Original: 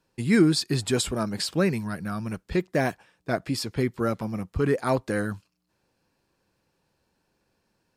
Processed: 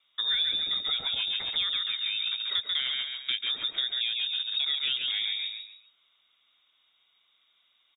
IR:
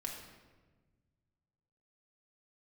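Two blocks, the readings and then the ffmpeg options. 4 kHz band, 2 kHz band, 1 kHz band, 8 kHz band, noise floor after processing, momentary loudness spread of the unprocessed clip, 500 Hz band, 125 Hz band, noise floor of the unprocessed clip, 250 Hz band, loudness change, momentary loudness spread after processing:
+11.0 dB, −3.0 dB, −14.0 dB, below −40 dB, −70 dBFS, 11 LU, below −25 dB, below −30 dB, −75 dBFS, below −30 dB, −1.0 dB, 4 LU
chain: -filter_complex "[0:a]asplit=5[link_01][link_02][link_03][link_04][link_05];[link_02]adelay=137,afreqshift=-39,volume=-4dB[link_06];[link_03]adelay=274,afreqshift=-78,volume=-13.9dB[link_07];[link_04]adelay=411,afreqshift=-117,volume=-23.8dB[link_08];[link_05]adelay=548,afreqshift=-156,volume=-33.7dB[link_09];[link_01][link_06][link_07][link_08][link_09]amix=inputs=5:normalize=0,lowpass=frequency=3200:width_type=q:width=0.5098,lowpass=frequency=3200:width_type=q:width=0.6013,lowpass=frequency=3200:width_type=q:width=0.9,lowpass=frequency=3200:width_type=q:width=2.563,afreqshift=-3800,acrossover=split=120|580[link_10][link_11][link_12];[link_10]acompressor=threshold=-60dB:ratio=4[link_13];[link_11]acompressor=threshold=-56dB:ratio=4[link_14];[link_12]acompressor=threshold=-31dB:ratio=4[link_15];[link_13][link_14][link_15]amix=inputs=3:normalize=0,volume=3dB"

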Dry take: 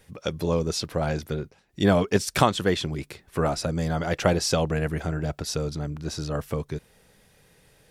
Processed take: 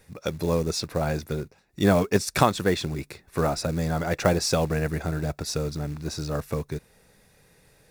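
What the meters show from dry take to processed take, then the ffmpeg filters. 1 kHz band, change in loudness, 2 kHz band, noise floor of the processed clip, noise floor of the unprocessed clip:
0.0 dB, 0.0 dB, 0.0 dB, −60 dBFS, −60 dBFS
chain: -af "acrusher=bits=5:mode=log:mix=0:aa=0.000001,bandreject=frequency=3100:width=5.8"

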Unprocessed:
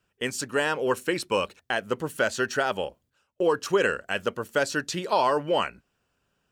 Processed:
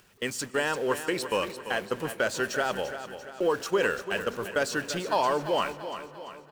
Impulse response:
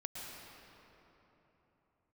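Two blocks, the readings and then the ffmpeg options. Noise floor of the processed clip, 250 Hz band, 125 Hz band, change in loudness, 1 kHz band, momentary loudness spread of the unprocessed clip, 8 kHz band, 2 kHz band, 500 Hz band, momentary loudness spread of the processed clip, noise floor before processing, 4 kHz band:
−50 dBFS, −2.0 dB, −2.5 dB, −2.5 dB, −2.0 dB, 7 LU, −1.0 dB, −2.0 dB, −2.0 dB, 11 LU, −76 dBFS, −1.5 dB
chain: -filter_complex "[0:a]aeval=exprs='val(0)+0.5*0.0158*sgn(val(0))':channel_layout=same,agate=range=-59dB:threshold=-31dB:ratio=16:detection=peak,equalizer=frequency=71:width=0.67:gain=-3.5,acompressor=mode=upward:threshold=-28dB:ratio=2.5,aecho=1:1:342|684|1026|1368|1710:0.282|0.144|0.0733|0.0374|0.0191,asplit=2[link_01][link_02];[1:a]atrim=start_sample=2205[link_03];[link_02][link_03]afir=irnorm=-1:irlink=0,volume=-15.5dB[link_04];[link_01][link_04]amix=inputs=2:normalize=0,volume=-4dB"

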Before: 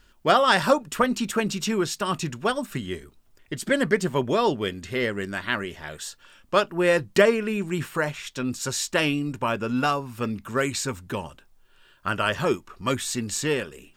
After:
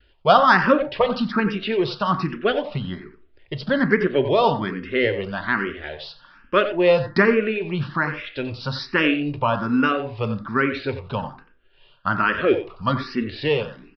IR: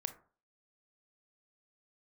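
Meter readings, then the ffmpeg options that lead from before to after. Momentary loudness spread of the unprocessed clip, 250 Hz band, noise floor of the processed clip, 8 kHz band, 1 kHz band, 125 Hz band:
13 LU, +4.0 dB, −57 dBFS, below −25 dB, +4.5 dB, +4.0 dB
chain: -filter_complex "[0:a]agate=range=-33dB:threshold=-53dB:ratio=3:detection=peak,asplit=2[link_01][link_02];[link_02]adelay=90,highpass=300,lowpass=3400,asoftclip=type=hard:threshold=-15dB,volume=-10dB[link_03];[link_01][link_03]amix=inputs=2:normalize=0,asplit=2[link_04][link_05];[1:a]atrim=start_sample=2205,lowpass=frequency=4000:poles=1[link_06];[link_05][link_06]afir=irnorm=-1:irlink=0,volume=9dB[link_07];[link_04][link_07]amix=inputs=2:normalize=0,aresample=11025,aresample=44100,asplit=2[link_08][link_09];[link_09]afreqshift=1.2[link_10];[link_08][link_10]amix=inputs=2:normalize=1,volume=-4dB"

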